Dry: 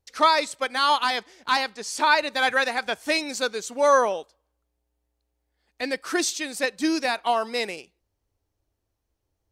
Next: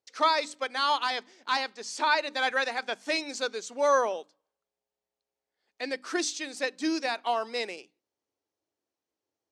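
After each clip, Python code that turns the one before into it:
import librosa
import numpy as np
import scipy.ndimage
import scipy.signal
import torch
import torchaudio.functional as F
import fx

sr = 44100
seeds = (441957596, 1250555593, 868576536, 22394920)

y = scipy.signal.sosfilt(scipy.signal.cheby1(2, 1.0, [280.0, 6600.0], 'bandpass', fs=sr, output='sos'), x)
y = fx.hum_notches(y, sr, base_hz=50, count=6)
y = y * librosa.db_to_amplitude(-4.5)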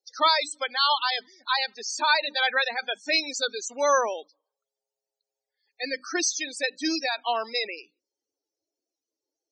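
y = fx.high_shelf(x, sr, hz=2400.0, db=12.0)
y = fx.spec_topn(y, sr, count=32)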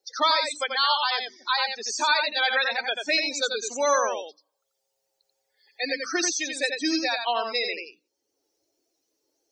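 y = x + 10.0 ** (-5.5 / 20.0) * np.pad(x, (int(87 * sr / 1000.0), 0))[:len(x)]
y = fx.band_squash(y, sr, depth_pct=40)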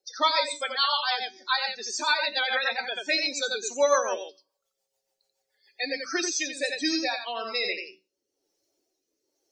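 y = fx.comb_fb(x, sr, f0_hz=190.0, decay_s=0.29, harmonics='all', damping=0.0, mix_pct=70)
y = fx.rotary_switch(y, sr, hz=7.0, then_hz=1.1, switch_at_s=5.81)
y = y * librosa.db_to_amplitude(8.5)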